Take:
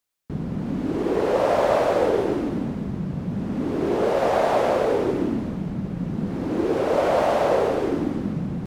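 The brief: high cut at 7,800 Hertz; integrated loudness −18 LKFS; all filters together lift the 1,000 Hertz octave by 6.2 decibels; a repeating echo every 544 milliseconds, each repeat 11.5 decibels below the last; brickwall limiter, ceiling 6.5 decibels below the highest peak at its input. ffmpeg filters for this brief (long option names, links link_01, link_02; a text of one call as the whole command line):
ffmpeg -i in.wav -af "lowpass=7800,equalizer=frequency=1000:width_type=o:gain=8.5,alimiter=limit=-10.5dB:level=0:latency=1,aecho=1:1:544|1088|1632:0.266|0.0718|0.0194,volume=4dB" out.wav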